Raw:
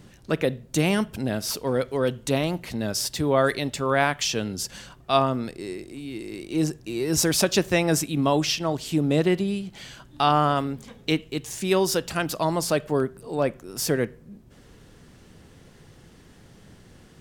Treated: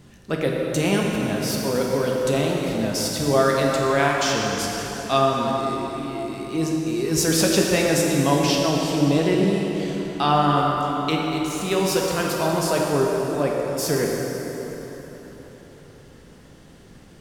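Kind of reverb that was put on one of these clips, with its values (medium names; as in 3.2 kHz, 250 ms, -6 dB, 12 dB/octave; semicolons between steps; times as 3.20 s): plate-style reverb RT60 4.3 s, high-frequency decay 0.7×, DRR -2 dB; trim -1 dB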